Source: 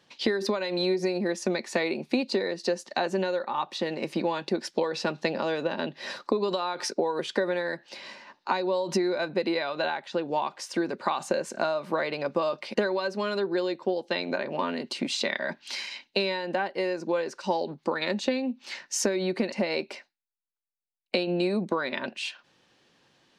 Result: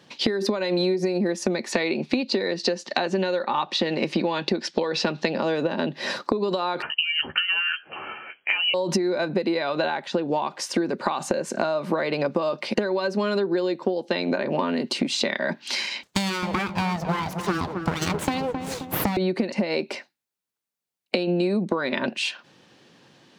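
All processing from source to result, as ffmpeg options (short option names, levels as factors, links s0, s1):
-filter_complex "[0:a]asettb=1/sr,asplit=3[s0][s1][s2];[s0]atrim=end=1.724[s3];[s1]atrim=start=1.72:end=5.38,asetpts=PTS-STARTPTS,afade=t=in:d=0.004:c=qsin,afade=t=out:st=3.656:d=0.004:c=qsin,lowpass=4100,highshelf=f=2500:g=11[s4];[s2]atrim=start=5.376[s5];[s3][s4]acrossfade=d=0.004:c1=hsin:c2=qsin[s6];[s6][s5]acrossfade=d=0.004:c1=qsin:c2=hsin,asettb=1/sr,asplit=3[s7][s8][s9];[s7]atrim=end=6.824[s10];[s8]atrim=start=6.82:end=8.74,asetpts=PTS-STARTPTS,afade=t=in:d=0.004:c=qsin,afade=t=out:st=1.916:d=0.004:c=qsin,lowpass=f=2800:t=q:w=0.5098,lowpass=f=2800:t=q:w=0.6013,lowpass=f=2800:t=q:w=0.9,lowpass=f=2800:t=q:w=2.563,afreqshift=-3300,asplit=2[s11][s12];[s12]adelay=13,volume=0.501[s13];[s11][s13]amix=inputs=2:normalize=0,atrim=end_sample=84672[s14];[s9]atrim=start=8.736[s15];[s10][s14]acrossfade=d=0.004:c1=hsin:c2=qsin[s16];[s16][s15]acrossfade=d=0.004:c1=qsin:c2=hsin,asettb=1/sr,asplit=3[s17][s18][s19];[s17]atrim=end=16.034[s20];[s18]atrim=start=16.03:end=19.17,asetpts=PTS-STARTPTS,afade=t=in:d=0.004:c=qsin,afade=t=out:st=3.136:d=0.004:c=qsin,aeval=exprs='abs(val(0))':c=same,asplit=2[s21][s22];[s22]adelay=265,lowpass=f=1200:p=1,volume=0.335,asplit=2[s23][s24];[s24]adelay=265,lowpass=f=1200:p=1,volume=0.54,asplit=2[s25][s26];[s26]adelay=265,lowpass=f=1200:p=1,volume=0.54,asplit=2[s27][s28];[s28]adelay=265,lowpass=f=1200:p=1,volume=0.54,asplit=2[s29][s30];[s30]adelay=265,lowpass=f=1200:p=1,volume=0.54,asplit=2[s31][s32];[s32]adelay=265,lowpass=f=1200:p=1,volume=0.54[s33];[s21][s23][s25][s27][s29][s31][s33]amix=inputs=7:normalize=0,atrim=end_sample=138474[s34];[s19]atrim=start=19.166[s35];[s20][s34]acrossfade=d=0.004:c1=hsin:c2=qsin[s36];[s36][s35]acrossfade=d=0.004:c1=qsin:c2=hsin,highpass=120,lowshelf=f=340:g=8,acompressor=threshold=0.0398:ratio=6,volume=2.37"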